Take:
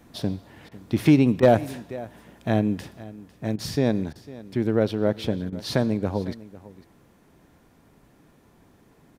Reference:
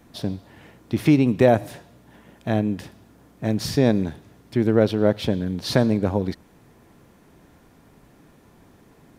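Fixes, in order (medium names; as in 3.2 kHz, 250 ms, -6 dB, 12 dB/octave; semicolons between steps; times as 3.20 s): clip repair -7 dBFS; interpolate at 0.69/1.40/3.56/4.13/5.50 s, 24 ms; inverse comb 501 ms -18.5 dB; gain correction +4 dB, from 3.03 s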